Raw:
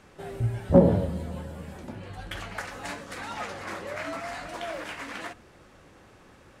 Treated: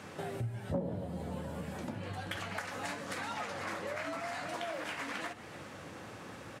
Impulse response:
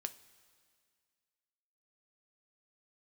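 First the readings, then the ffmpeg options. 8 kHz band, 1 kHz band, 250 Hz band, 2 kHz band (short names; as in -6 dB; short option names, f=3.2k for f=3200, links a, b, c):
-2.0 dB, -4.0 dB, -12.5 dB, -2.5 dB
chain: -filter_complex "[0:a]highpass=f=90:w=0.5412,highpass=f=90:w=1.3066,bandreject=f=380:w=12,asplit=6[a][b][c][d][e][f];[b]adelay=140,afreqshift=83,volume=-21.5dB[g];[c]adelay=280,afreqshift=166,volume=-25.8dB[h];[d]adelay=420,afreqshift=249,volume=-30.1dB[i];[e]adelay=560,afreqshift=332,volume=-34.4dB[j];[f]adelay=700,afreqshift=415,volume=-38.7dB[k];[a][g][h][i][j][k]amix=inputs=6:normalize=0,acompressor=threshold=-45dB:ratio=4,volume=7dB"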